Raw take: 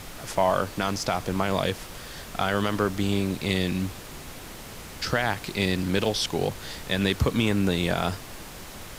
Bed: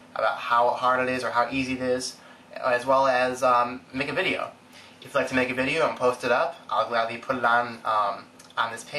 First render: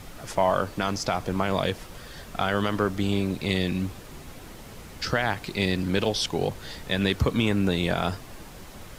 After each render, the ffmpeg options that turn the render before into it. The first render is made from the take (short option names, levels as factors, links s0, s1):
-af "afftdn=nr=6:nf=-41"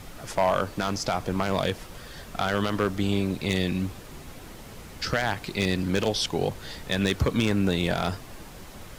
-af "aeval=exprs='0.211*(abs(mod(val(0)/0.211+3,4)-2)-1)':c=same"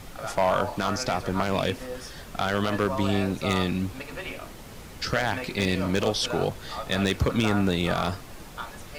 -filter_complex "[1:a]volume=0.266[s0];[0:a][s0]amix=inputs=2:normalize=0"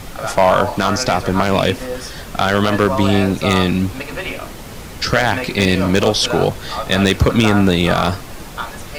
-af "volume=3.35,alimiter=limit=0.794:level=0:latency=1"